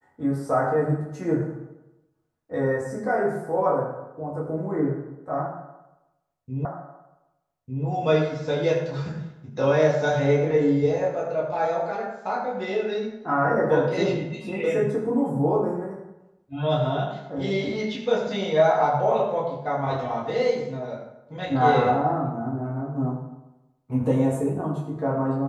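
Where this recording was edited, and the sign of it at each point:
6.65 repeat of the last 1.2 s

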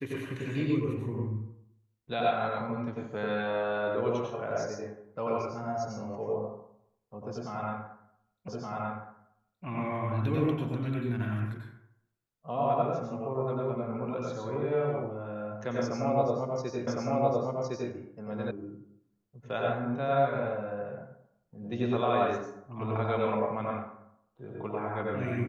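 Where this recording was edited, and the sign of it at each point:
8.48 repeat of the last 1.17 s
16.87 repeat of the last 1.06 s
18.51 sound cut off

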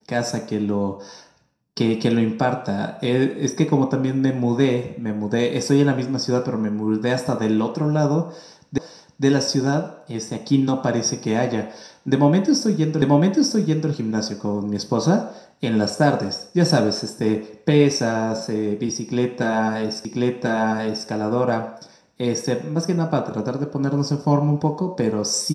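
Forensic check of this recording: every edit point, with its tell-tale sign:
8.78 repeat of the last 0.47 s
13.02 repeat of the last 0.89 s
20.05 repeat of the last 1.04 s

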